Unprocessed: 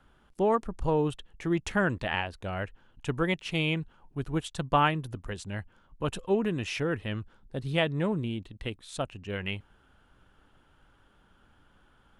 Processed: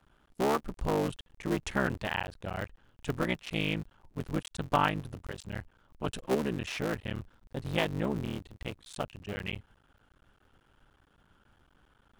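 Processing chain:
sub-harmonics by changed cycles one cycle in 3, muted
level −1.5 dB

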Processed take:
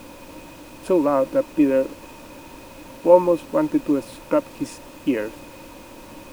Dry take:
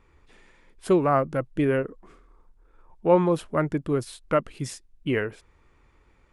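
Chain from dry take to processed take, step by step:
high-pass filter 200 Hz
in parallel at +0.5 dB: downward compressor, threshold −31 dBFS, peak gain reduction 17 dB
on the sum: bit reduction 7 bits
background noise pink −38 dBFS
hollow resonant body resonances 300/540/920/2,500 Hz, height 15 dB, ringing for 40 ms
level −8 dB

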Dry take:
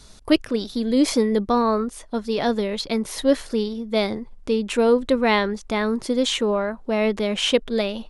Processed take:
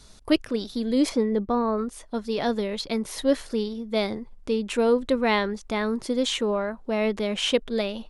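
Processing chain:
0:01.08–0:01.77: low-pass filter 1,900 Hz → 1,000 Hz 6 dB per octave
level −3.5 dB

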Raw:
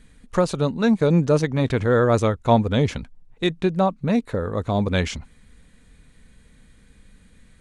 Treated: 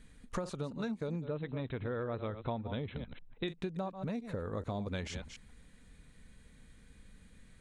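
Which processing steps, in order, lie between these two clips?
delay that plays each chunk backwards 145 ms, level −13.5 dB
downward compressor 10 to 1, threshold −28 dBFS, peak gain reduction 17 dB
0:01.24–0:03.48: linear-phase brick-wall low-pass 4,100 Hz
level −6 dB

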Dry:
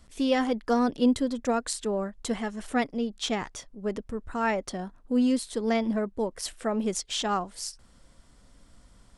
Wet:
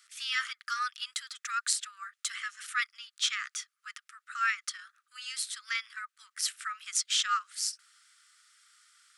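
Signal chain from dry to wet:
Chebyshev high-pass filter 1,200 Hz, order 8
level +4 dB

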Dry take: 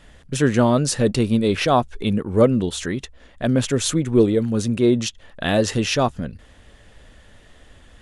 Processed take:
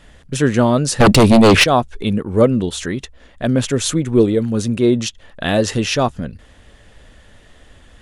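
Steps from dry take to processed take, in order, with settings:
0:01.00–0:01.64: sine wavefolder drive 9 dB, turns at −7.5 dBFS
level +2.5 dB

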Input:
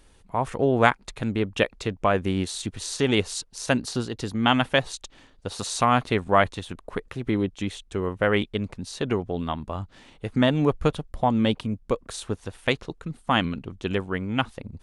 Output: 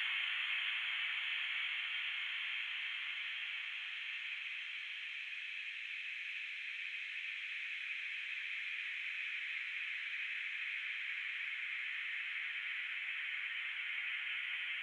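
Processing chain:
four-pole ladder high-pass 2,100 Hz, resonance 80%
extreme stretch with random phases 20×, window 1.00 s, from 0:13.47

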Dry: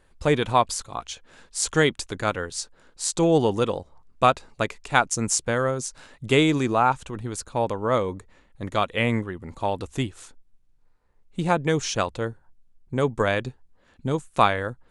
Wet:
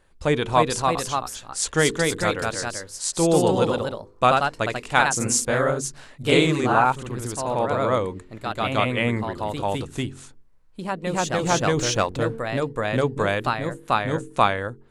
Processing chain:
hum removal 45.15 Hz, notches 10
0:11.77–0:13.01: leveller curve on the samples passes 1
delay with pitch and tempo change per echo 322 ms, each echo +1 semitone, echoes 2

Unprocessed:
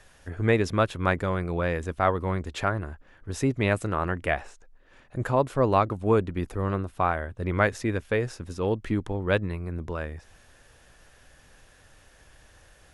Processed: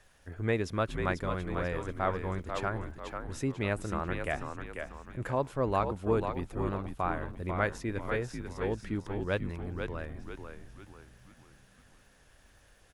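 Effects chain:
echo with shifted repeats 492 ms, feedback 41%, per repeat −70 Hz, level −6 dB
surface crackle 270 per second −54 dBFS
level −7.5 dB

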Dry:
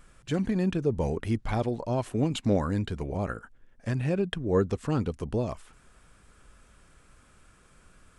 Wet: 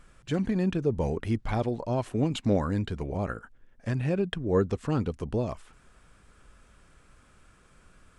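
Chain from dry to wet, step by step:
high-shelf EQ 9,400 Hz −7.5 dB

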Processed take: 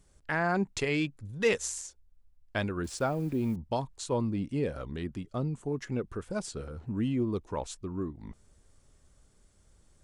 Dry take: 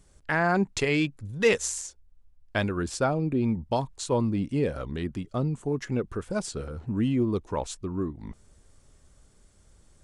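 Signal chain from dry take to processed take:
0:02.84–0:03.56: hold until the input has moved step −46.5 dBFS
level −4.5 dB

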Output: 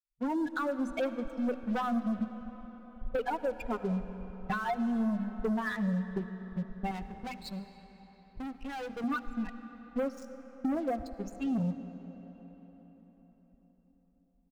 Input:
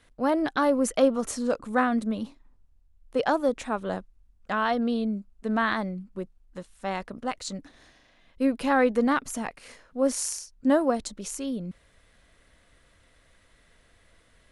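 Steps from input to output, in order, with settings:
spectral dynamics exaggerated over time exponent 3
camcorder AGC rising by 46 dB per second
low-pass that shuts in the quiet parts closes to 580 Hz, open at −22 dBFS
low-pass filter 1,200 Hz 6 dB per octave
mains-hum notches 50/100/150/200/250 Hz
comb filter 4.1 ms, depth 78%
leveller curve on the samples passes 3
downward compressor 4 to 1, threshold −25 dBFS, peak gain reduction 10 dB
0:06.91–0:09.04: tube saturation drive 31 dB, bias 0.4
convolution reverb RT60 4.8 s, pre-delay 35 ms, DRR 11 dB
level −6 dB

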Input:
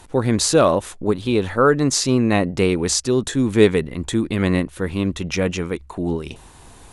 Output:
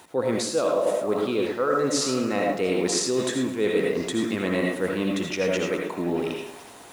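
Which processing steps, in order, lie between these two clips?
bit reduction 9 bits
high-pass filter 180 Hz 12 dB per octave
bass and treble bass −3 dB, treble −3 dB
echo through a band-pass that steps 211 ms, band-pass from 570 Hz, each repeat 0.7 octaves, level −11 dB
on a send at −1 dB: convolution reverb RT60 0.40 s, pre-delay 48 ms
on the sum: dynamic equaliser 500 Hz, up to +7 dB, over −32 dBFS, Q 7
reversed playback
downward compressor 6 to 1, threshold −21 dBFS, peak gain reduction 14.5 dB
reversed playback
feedback echo at a low word length 108 ms, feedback 55%, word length 7 bits, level −14 dB

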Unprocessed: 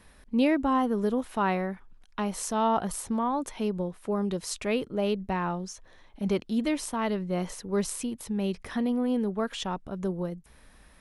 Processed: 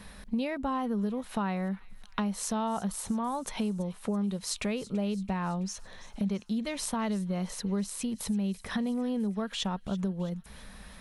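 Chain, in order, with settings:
thirty-one-band graphic EQ 200 Hz +9 dB, 315 Hz −10 dB, 4,000 Hz +4 dB
downward compressor 5 to 1, threshold −37 dBFS, peak gain reduction 17 dB
delay with a high-pass on its return 332 ms, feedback 61%, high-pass 2,300 Hz, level −17 dB
level +7 dB

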